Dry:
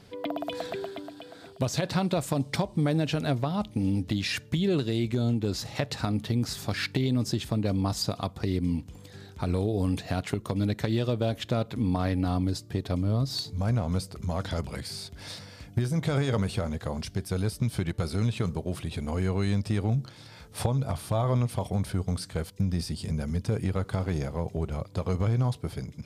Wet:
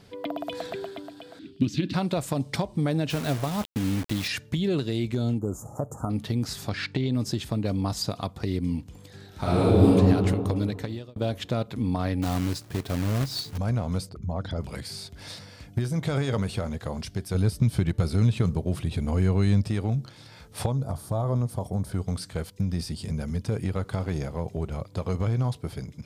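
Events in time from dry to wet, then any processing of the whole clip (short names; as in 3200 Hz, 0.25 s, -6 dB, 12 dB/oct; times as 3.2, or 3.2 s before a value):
1.39–1.94 EQ curve 140 Hz 0 dB, 220 Hz +10 dB, 320 Hz +12 dB, 470 Hz -14 dB, 690 Hz -26 dB, 2800 Hz +2 dB, 9100 Hz -14 dB
3.1–4.28 requantised 6-bit, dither none
5.38–6.1 Chebyshev band-stop 1300–6800 Hz, order 4
6.69–7.14 air absorption 74 m
9.28–9.88 reverb throw, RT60 2.6 s, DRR -10 dB
10.6–11.16 fade out
12.22–13.58 companded quantiser 4-bit
14.09–14.61 formant sharpening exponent 1.5
17.34–19.68 low shelf 270 Hz +7 dB
20.72–21.92 bell 2600 Hz -14.5 dB 1.4 oct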